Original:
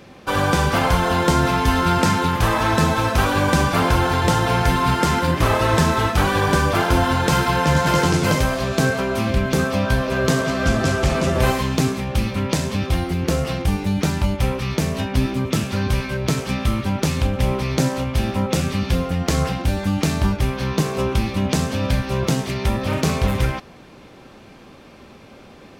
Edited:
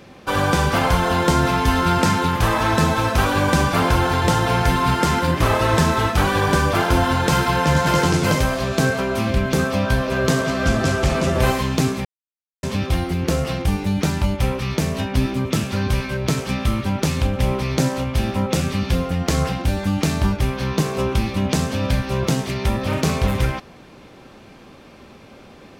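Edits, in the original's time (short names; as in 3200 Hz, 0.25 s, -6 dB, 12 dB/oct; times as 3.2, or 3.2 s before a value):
12.05–12.63 mute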